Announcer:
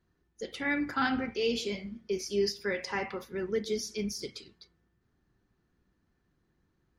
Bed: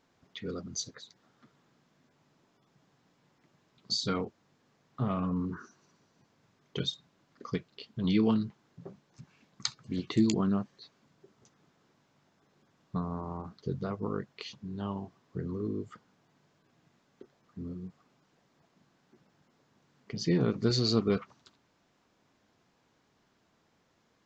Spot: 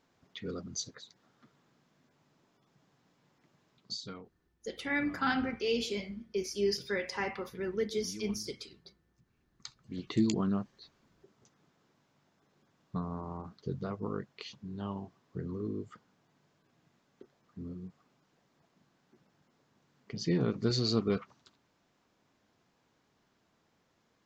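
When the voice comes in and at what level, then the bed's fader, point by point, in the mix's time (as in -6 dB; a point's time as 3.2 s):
4.25 s, -1.5 dB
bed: 3.73 s -1.5 dB
4.29 s -19 dB
9.41 s -19 dB
10.14 s -2.5 dB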